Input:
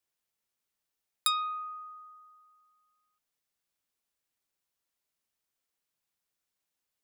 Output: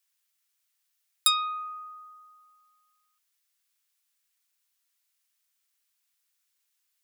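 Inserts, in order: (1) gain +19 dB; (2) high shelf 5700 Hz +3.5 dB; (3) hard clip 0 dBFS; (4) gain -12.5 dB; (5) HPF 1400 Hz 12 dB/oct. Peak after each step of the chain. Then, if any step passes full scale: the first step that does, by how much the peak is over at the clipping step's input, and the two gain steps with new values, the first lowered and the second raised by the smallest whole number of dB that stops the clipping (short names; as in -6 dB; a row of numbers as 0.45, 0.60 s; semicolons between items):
+6.5, +8.0, 0.0, -12.5, -8.5 dBFS; step 1, 8.0 dB; step 1 +11 dB, step 4 -4.5 dB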